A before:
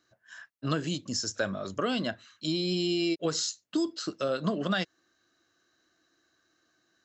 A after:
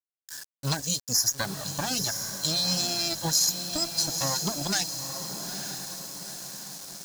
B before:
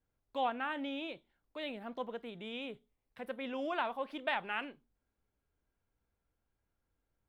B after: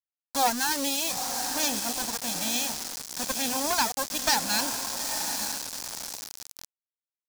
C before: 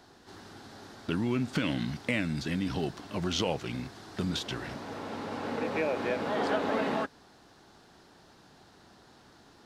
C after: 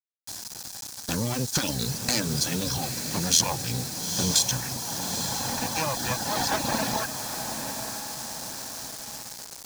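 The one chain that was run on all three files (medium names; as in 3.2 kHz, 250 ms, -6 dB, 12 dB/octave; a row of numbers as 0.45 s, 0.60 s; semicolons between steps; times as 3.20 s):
comb filter that takes the minimum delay 1.2 ms; graphic EQ with 31 bands 125 Hz +5 dB, 630 Hz -4 dB, 4 kHz +3 dB, 6.3 kHz +4 dB; reverb removal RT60 0.89 s; high-pass 97 Hz 6 dB/octave; on a send: echo that smears into a reverb 901 ms, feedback 50%, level -8 dB; on the sum: bit crusher 8-bit; resonant high shelf 3.9 kHz +10.5 dB, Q 1.5; loudness maximiser +12.5 dB; normalise loudness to -27 LUFS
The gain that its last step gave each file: -11.0 dB, -1.0 dB, -6.5 dB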